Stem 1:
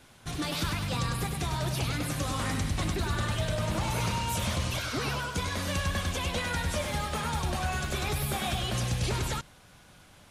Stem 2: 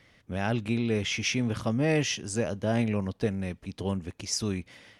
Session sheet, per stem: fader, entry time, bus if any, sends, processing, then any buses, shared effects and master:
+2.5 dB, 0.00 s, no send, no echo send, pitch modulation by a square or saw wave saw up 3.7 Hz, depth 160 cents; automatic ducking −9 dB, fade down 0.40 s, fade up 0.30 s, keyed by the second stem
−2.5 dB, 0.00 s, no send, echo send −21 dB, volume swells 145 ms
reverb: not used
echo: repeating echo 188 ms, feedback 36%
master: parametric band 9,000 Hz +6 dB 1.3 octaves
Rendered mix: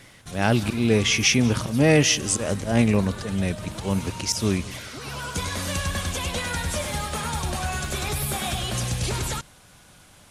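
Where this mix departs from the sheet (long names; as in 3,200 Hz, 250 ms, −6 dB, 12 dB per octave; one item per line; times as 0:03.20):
stem 1: missing pitch modulation by a square or saw wave saw up 3.7 Hz, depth 160 cents
stem 2 −2.5 dB → +8.0 dB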